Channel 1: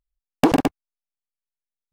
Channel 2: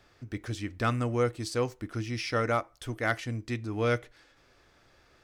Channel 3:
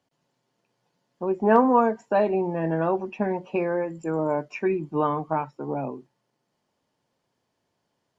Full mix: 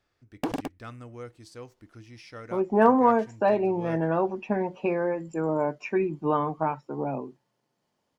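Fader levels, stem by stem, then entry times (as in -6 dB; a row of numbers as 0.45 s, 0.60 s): -13.5 dB, -14.0 dB, -1.0 dB; 0.00 s, 0.00 s, 1.30 s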